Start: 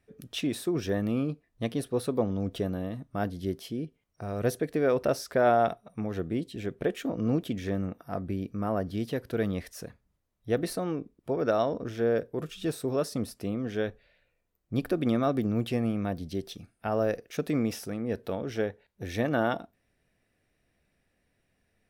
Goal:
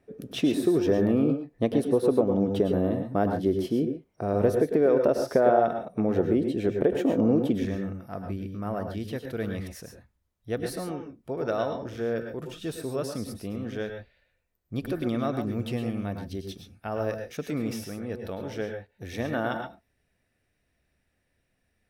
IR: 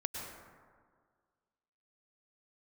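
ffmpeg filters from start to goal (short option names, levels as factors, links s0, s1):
-filter_complex "[0:a]asetnsamples=n=441:p=0,asendcmd='7.65 equalizer g -2',equalizer=f=420:t=o:w=2.9:g=12.5,acompressor=threshold=0.126:ratio=4[s0];[1:a]atrim=start_sample=2205,afade=t=out:st=0.19:d=0.01,atrim=end_sample=8820[s1];[s0][s1]afir=irnorm=-1:irlink=0"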